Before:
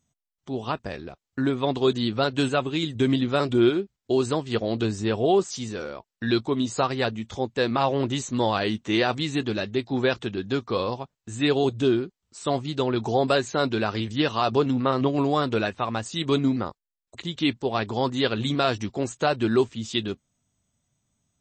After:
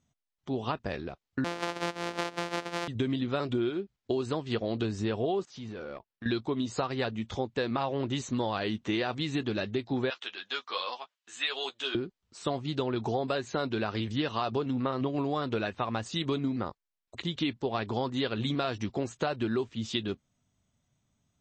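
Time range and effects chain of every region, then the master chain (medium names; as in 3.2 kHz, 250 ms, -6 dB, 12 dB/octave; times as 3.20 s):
1.44–2.88 s: sorted samples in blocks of 256 samples + high-pass 350 Hz
5.45–6.26 s: level held to a coarse grid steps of 13 dB + hard clipper -33.5 dBFS + distance through air 140 m
10.10–11.95 s: high-pass 1.2 kHz + peaking EQ 3.1 kHz +4 dB 0.37 oct + doubling 12 ms -5 dB
whole clip: low-pass 5.3 kHz 12 dB/octave; compression, threshold -27 dBFS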